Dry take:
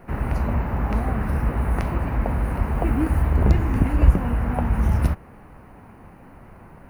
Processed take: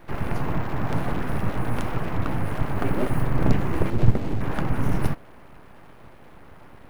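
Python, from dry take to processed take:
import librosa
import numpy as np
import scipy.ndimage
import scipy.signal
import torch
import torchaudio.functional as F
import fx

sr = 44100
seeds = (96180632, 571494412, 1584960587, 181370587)

y = fx.median_filter(x, sr, points=41, at=(3.9, 4.41))
y = np.abs(y)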